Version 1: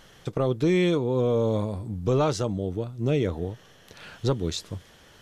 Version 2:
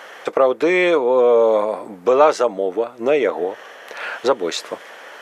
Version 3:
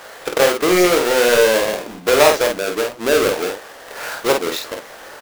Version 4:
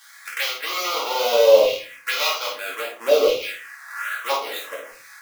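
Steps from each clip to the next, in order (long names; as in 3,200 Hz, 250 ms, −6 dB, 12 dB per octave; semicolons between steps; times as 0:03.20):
high-pass filter 270 Hz 24 dB per octave; flat-topped bell 1,100 Hz +11.5 dB 2.7 octaves; in parallel at +2.5 dB: downward compressor, threshold −26 dBFS, peak gain reduction 15.5 dB
each half-wave held at its own peak; flanger 0.78 Hz, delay 2.1 ms, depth 9.5 ms, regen −86%; on a send: ambience of single reflections 22 ms −9 dB, 50 ms −4.5 dB
auto-filter high-pass saw down 0.61 Hz 540–2,700 Hz; phaser swept by the level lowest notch 430 Hz, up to 1,700 Hz, full sweep at −14.5 dBFS; rectangular room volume 200 cubic metres, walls furnished, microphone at 2.3 metres; level −6.5 dB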